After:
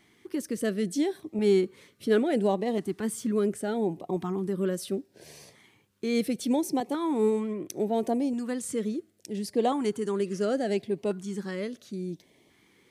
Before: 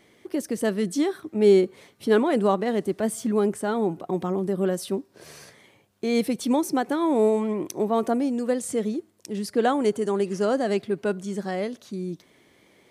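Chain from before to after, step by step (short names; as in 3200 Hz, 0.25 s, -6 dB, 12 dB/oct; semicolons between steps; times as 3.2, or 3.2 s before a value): LFO notch saw up 0.72 Hz 500–1600 Hz; 6.8–7.7 three-band expander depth 70%; gain -3 dB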